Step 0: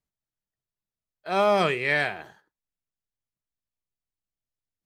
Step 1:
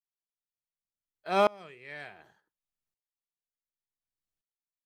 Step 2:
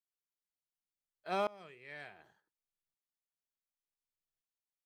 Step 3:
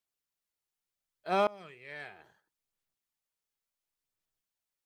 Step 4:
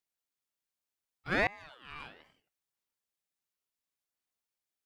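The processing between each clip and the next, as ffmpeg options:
ffmpeg -i in.wav -af "aeval=exprs='val(0)*pow(10,-29*if(lt(mod(-0.68*n/s,1),2*abs(-0.68)/1000),1-mod(-0.68*n/s,1)/(2*abs(-0.68)/1000),(mod(-0.68*n/s,1)-2*abs(-0.68)/1000)/(1-2*abs(-0.68)/1000))/20)':channel_layout=same" out.wav
ffmpeg -i in.wav -af "alimiter=limit=-17dB:level=0:latency=1:release=18,volume=-5.5dB" out.wav
ffmpeg -i in.wav -af "aphaser=in_gain=1:out_gain=1:delay=2.4:decay=0.26:speed=0.71:type=sinusoidal,volume=4dB" out.wav
ffmpeg -i in.wav -af "highpass=110,aeval=exprs='val(0)*sin(2*PI*1000*n/s+1000*0.45/1.3*sin(2*PI*1.3*n/s))':channel_layout=same,volume=1dB" out.wav

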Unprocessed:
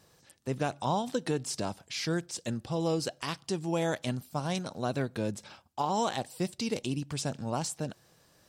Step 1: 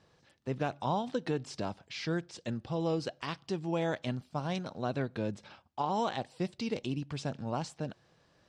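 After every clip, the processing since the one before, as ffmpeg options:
ffmpeg -i in.wav -af "lowpass=4000,volume=-2dB" out.wav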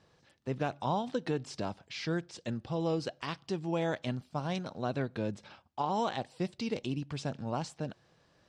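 ffmpeg -i in.wav -af anull out.wav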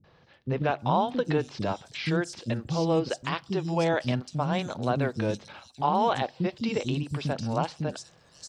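ffmpeg -i in.wav -filter_complex "[0:a]acrossover=split=300|4700[link_01][link_02][link_03];[link_02]adelay=40[link_04];[link_03]adelay=790[link_05];[link_01][link_04][link_05]amix=inputs=3:normalize=0,volume=8dB" out.wav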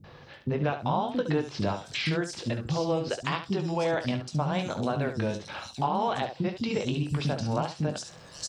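ffmpeg -i in.wav -af "acompressor=threshold=-40dB:ratio=2.5,aecho=1:1:20|70:0.355|0.335,volume=9dB" out.wav

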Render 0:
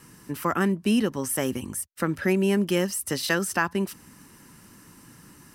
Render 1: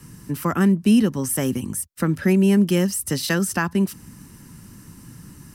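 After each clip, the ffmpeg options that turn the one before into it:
ffmpeg -i in.wav -filter_complex "[0:a]bass=frequency=250:gain=13,treble=frequency=4000:gain=4,acrossover=split=130|1200[link_01][link_02][link_03];[link_01]acompressor=threshold=-41dB:ratio=6[link_04];[link_04][link_02][link_03]amix=inputs=3:normalize=0" out.wav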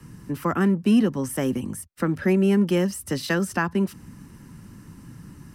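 ffmpeg -i in.wav -filter_complex "[0:a]highshelf=frequency=4200:gain=-11,acrossover=split=190|3200[link_01][link_02][link_03];[link_01]asoftclip=type=tanh:threshold=-33dB[link_04];[link_04][link_02][link_03]amix=inputs=3:normalize=0" out.wav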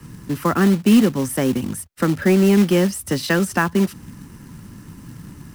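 ffmpeg -i in.wav -af "acrusher=bits=4:mode=log:mix=0:aa=0.000001,volume=5dB" out.wav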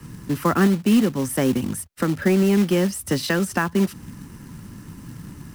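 ffmpeg -i in.wav -af "alimiter=limit=-10dB:level=0:latency=1:release=407" out.wav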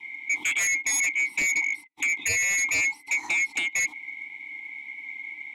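ffmpeg -i in.wav -filter_complex "[0:a]afftfilt=real='real(if(lt(b,920),b+92*(1-2*mod(floor(b/92),2)),b),0)':imag='imag(if(lt(b,920),b+92*(1-2*mod(floor(b/92),2)),b),0)':win_size=2048:overlap=0.75,asplit=3[link_01][link_02][link_03];[link_01]bandpass=frequency=300:width_type=q:width=8,volume=0dB[link_04];[link_02]bandpass=frequency=870:width_type=q:width=8,volume=-6dB[link_05];[link_03]bandpass=frequency=2240:width_type=q:width=8,volume=-9dB[link_06];[link_04][link_05][link_06]amix=inputs=3:normalize=0,aeval=exprs='0.119*sin(PI/2*3.16*val(0)/0.119)':channel_layout=same,volume=-2.5dB" out.wav

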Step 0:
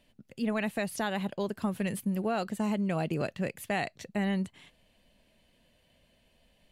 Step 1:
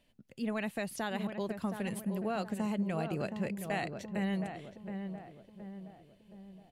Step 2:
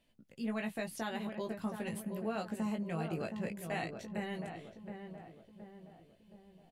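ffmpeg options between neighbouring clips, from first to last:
ffmpeg -i in.wav -filter_complex "[0:a]asplit=2[link_01][link_02];[link_02]adelay=720,lowpass=frequency=1300:poles=1,volume=-6.5dB,asplit=2[link_03][link_04];[link_04]adelay=720,lowpass=frequency=1300:poles=1,volume=0.51,asplit=2[link_05][link_06];[link_06]adelay=720,lowpass=frequency=1300:poles=1,volume=0.51,asplit=2[link_07][link_08];[link_08]adelay=720,lowpass=frequency=1300:poles=1,volume=0.51,asplit=2[link_09][link_10];[link_10]adelay=720,lowpass=frequency=1300:poles=1,volume=0.51,asplit=2[link_11][link_12];[link_12]adelay=720,lowpass=frequency=1300:poles=1,volume=0.51[link_13];[link_01][link_03][link_05][link_07][link_09][link_11][link_13]amix=inputs=7:normalize=0,volume=-4.5dB" out.wav
ffmpeg -i in.wav -af "aecho=1:1:18|29:0.631|0.158,volume=-4dB" out.wav

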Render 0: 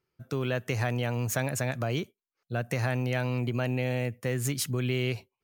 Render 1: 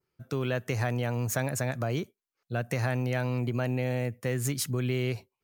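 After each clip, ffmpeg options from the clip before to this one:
ffmpeg -i in.wav -af "adynamicequalizer=threshold=0.00316:dfrequency=2900:dqfactor=1.8:tfrequency=2900:tqfactor=1.8:attack=5:release=100:ratio=0.375:range=3:mode=cutabove:tftype=bell" out.wav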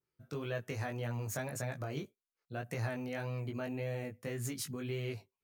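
ffmpeg -i in.wav -af "flanger=delay=17.5:depth=2.9:speed=1.8,volume=-5.5dB" out.wav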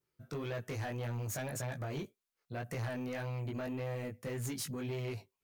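ffmpeg -i in.wav -af "asoftclip=type=tanh:threshold=-37dB,volume=3.5dB" out.wav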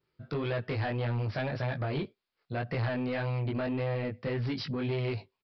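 ffmpeg -i in.wav -af "aresample=11025,aresample=44100,volume=7dB" out.wav

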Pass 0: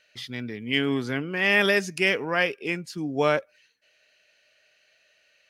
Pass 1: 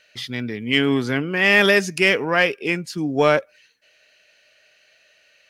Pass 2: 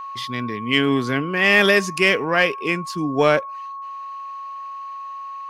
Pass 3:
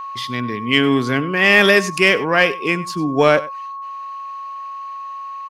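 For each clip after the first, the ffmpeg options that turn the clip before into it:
ffmpeg -i in.wav -af "acontrast=60" out.wav
ffmpeg -i in.wav -af "aeval=exprs='val(0)+0.0316*sin(2*PI*1100*n/s)':channel_layout=same" out.wav
ffmpeg -i in.wav -af "aecho=1:1:97:0.119,volume=3dB" out.wav

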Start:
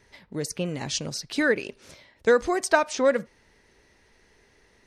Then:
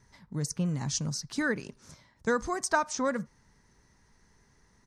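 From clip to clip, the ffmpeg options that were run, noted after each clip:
ffmpeg -i in.wav -af "firequalizer=gain_entry='entry(100,0);entry(140,5);entry(350,-9);entry(560,-11);entry(1000,-1);entry(2600,-14);entry(6100,0);entry(12000,-7)':delay=0.05:min_phase=1" out.wav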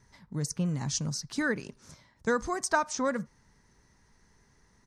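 ffmpeg -i in.wav -af anull out.wav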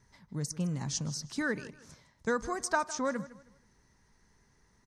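ffmpeg -i in.wav -af "aecho=1:1:158|316|474:0.141|0.041|0.0119,volume=-3dB" out.wav

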